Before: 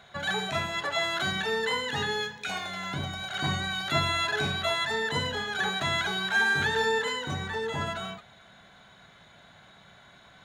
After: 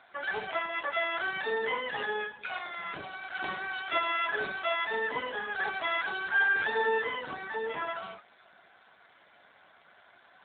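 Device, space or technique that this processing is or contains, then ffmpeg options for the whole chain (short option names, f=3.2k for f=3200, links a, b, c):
telephone: -af "highpass=330,lowpass=3.5k" -ar 8000 -c:a libopencore_amrnb -b:a 7400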